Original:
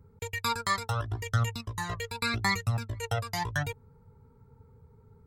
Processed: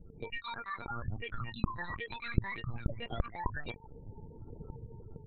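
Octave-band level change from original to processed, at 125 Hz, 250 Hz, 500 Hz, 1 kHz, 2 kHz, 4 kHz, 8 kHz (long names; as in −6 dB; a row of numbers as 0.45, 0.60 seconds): −7.5 dB, −2.5 dB, −6.5 dB, −8.5 dB, −8.0 dB, −11.5 dB, below −40 dB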